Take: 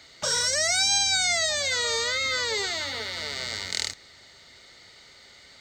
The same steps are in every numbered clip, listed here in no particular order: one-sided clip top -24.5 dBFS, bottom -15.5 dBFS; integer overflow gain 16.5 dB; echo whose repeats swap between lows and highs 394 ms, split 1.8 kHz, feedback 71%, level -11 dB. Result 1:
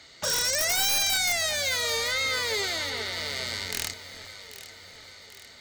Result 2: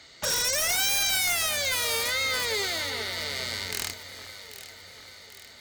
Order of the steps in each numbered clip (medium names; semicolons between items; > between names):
one-sided clip > integer overflow > echo whose repeats swap between lows and highs; integer overflow > echo whose repeats swap between lows and highs > one-sided clip